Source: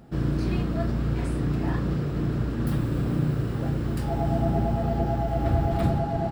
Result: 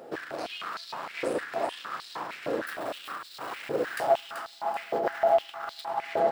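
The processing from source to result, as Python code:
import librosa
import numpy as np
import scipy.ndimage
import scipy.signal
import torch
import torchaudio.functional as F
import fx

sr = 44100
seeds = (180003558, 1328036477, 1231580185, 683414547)

p1 = fx.over_compress(x, sr, threshold_db=-26.0, ratio=-0.5)
p2 = 10.0 ** (-24.0 / 20.0) * np.tanh(p1 / 10.0 ** (-24.0 / 20.0))
p3 = p2 + fx.echo_feedback(p2, sr, ms=384, feedback_pct=42, wet_db=-7.0, dry=0)
p4 = fx.filter_held_highpass(p3, sr, hz=6.5, low_hz=500.0, high_hz=4100.0)
y = F.gain(torch.from_numpy(p4), 3.0).numpy()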